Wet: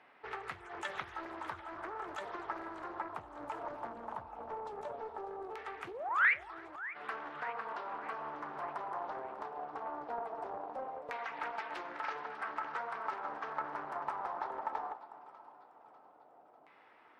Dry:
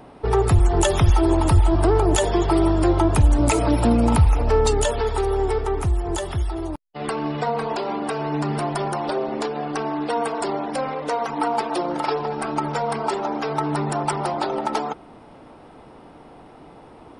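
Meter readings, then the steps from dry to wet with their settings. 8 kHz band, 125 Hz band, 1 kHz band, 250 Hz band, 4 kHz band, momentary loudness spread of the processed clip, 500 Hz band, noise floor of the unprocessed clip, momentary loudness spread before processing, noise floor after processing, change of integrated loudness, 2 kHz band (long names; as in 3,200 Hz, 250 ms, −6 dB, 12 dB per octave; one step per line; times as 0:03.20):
below −30 dB, below −40 dB, −14.0 dB, −29.5 dB, −22.0 dB, 6 LU, −22.5 dB, −46 dBFS, 9 LU, −62 dBFS, −18.0 dB, −4.5 dB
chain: high-pass filter 46 Hz
sound drawn into the spectrogram rise, 0:05.87–0:06.34, 330–2,500 Hz −12 dBFS
downward compressor 6 to 1, threshold −19 dBFS, peak gain reduction 9 dB
auto-filter low-pass saw down 0.18 Hz 670–2,000 Hz
first difference
flanger 1.3 Hz, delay 8.8 ms, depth 8 ms, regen −67%
echo with a time of its own for lows and highs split 1,100 Hz, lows 365 ms, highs 596 ms, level −15 dB
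highs frequency-modulated by the lows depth 0.43 ms
level +4.5 dB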